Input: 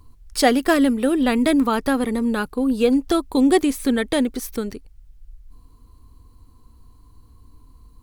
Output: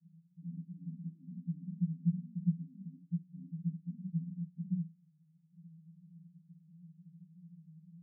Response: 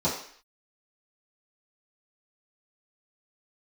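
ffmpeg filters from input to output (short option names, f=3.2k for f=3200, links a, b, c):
-filter_complex "[0:a]asoftclip=type=hard:threshold=-14dB,asuperpass=centerf=170:order=8:qfactor=5.7,asplit=2[a][b];[1:a]atrim=start_sample=2205,adelay=6[c];[b][c]afir=irnorm=-1:irlink=0,volume=-17dB[d];[a][d]amix=inputs=2:normalize=0,volume=11dB"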